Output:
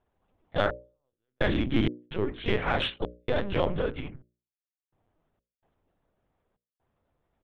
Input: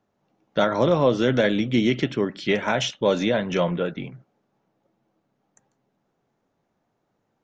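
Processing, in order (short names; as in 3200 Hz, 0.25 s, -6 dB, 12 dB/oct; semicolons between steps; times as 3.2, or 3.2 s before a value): harmoniser -12 st -10 dB, -3 st -10 dB, +4 st -9 dB; LPC vocoder at 8 kHz pitch kept; step gate "xxx...xx.xxxx.x" 64 bpm -60 dB; in parallel at -8 dB: soft clip -21 dBFS, distortion -7 dB; on the sum: notches 60/120/180/240/300/360/420/480/540/600 Hz; gain -6 dB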